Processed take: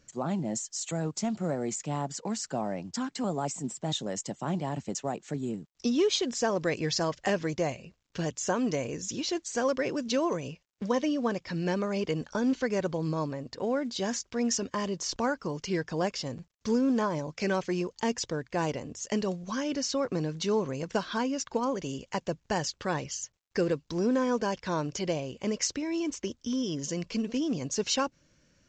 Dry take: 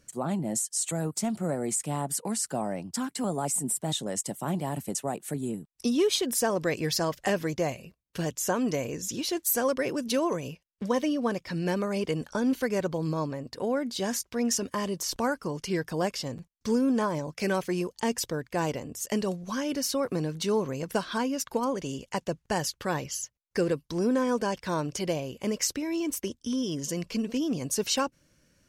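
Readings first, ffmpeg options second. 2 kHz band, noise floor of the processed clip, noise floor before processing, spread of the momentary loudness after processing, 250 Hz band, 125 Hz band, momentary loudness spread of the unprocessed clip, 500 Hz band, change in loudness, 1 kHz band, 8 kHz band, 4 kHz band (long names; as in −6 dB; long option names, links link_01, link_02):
−1.0 dB, −72 dBFS, −73 dBFS, 7 LU, −1.0 dB, −1.0 dB, 7 LU, −1.0 dB, −1.5 dB, −1.0 dB, −4.0 dB, −1.0 dB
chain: -af "volume=-1dB" -ar 16000 -c:a pcm_mulaw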